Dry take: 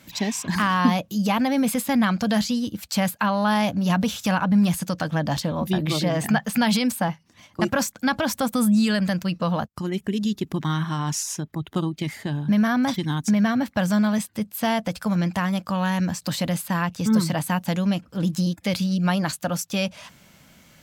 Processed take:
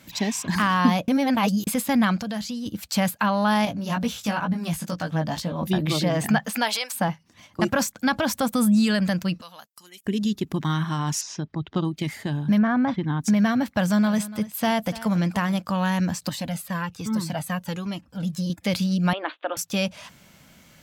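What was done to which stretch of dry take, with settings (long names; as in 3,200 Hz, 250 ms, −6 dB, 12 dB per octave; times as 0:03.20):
0:01.08–0:01.67: reverse
0:02.17–0:02.66: downward compressor 2 to 1, threshold −33 dBFS
0:03.65–0:05.63: chorus effect 2.2 Hz, delay 17 ms, depth 2.2 ms
0:06.46–0:06.93: high-pass filter 200 Hz → 790 Hz 24 dB per octave
0:09.41–0:10.06: first difference
0:11.21–0:11.85: Chebyshev low-pass filter 5,200 Hz, order 3
0:12.58–0:13.21: low-pass filter 1,900 Hz
0:13.77–0:15.57: single-tap delay 290 ms −17 dB
0:16.29–0:18.50: flanger whose copies keep moving one way falling 1.2 Hz
0:19.13–0:19.57: Chebyshev band-pass filter 300–3,600 Hz, order 5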